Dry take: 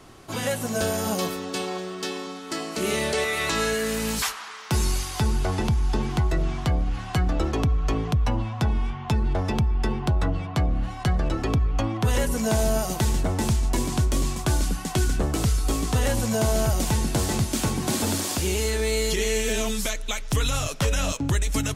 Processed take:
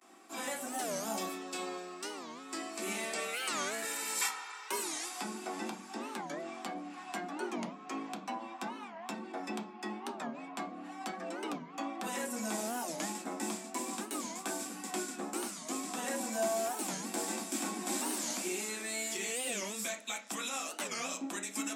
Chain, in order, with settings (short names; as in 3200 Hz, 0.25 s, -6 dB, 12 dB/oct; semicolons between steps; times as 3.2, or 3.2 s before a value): vibrato 0.37 Hz 49 cents; rippled Chebyshev high-pass 190 Hz, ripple 6 dB; 3.82–5.09 comb 2.2 ms, depth 93%; reverb RT60 0.40 s, pre-delay 3 ms, DRR 1 dB; record warp 45 rpm, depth 250 cents; gain -5 dB